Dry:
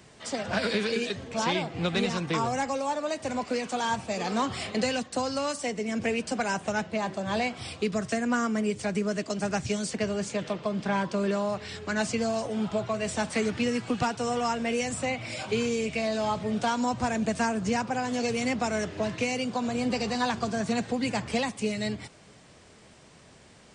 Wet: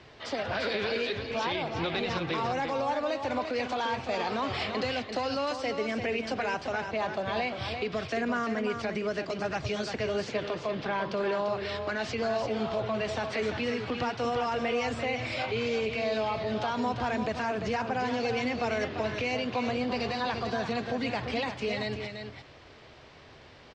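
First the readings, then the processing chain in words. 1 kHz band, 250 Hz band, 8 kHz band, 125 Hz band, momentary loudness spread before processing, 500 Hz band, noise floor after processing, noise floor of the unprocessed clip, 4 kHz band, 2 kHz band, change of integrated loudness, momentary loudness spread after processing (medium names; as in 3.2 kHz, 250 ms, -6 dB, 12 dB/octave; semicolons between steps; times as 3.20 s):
-1.0 dB, -5.0 dB, -12.5 dB, -3.0 dB, 4 LU, -0.5 dB, -52 dBFS, -54 dBFS, -1.0 dB, -0.5 dB, -2.0 dB, 3 LU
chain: low-pass 4.6 kHz 24 dB/octave; peaking EQ 190 Hz -10.5 dB 0.66 oct; peak limiter -25.5 dBFS, peak gain reduction 9 dB; delay 344 ms -7 dB; trim +3 dB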